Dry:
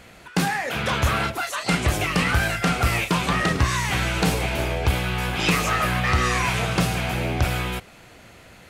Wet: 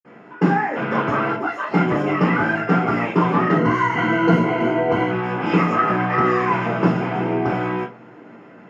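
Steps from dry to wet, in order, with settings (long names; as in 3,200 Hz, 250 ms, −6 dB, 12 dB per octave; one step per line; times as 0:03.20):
0:03.50–0:05.06: EQ curve with evenly spaced ripples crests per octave 1.9, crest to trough 14 dB
convolution reverb RT60 0.40 s, pre-delay 47 ms, DRR −60 dB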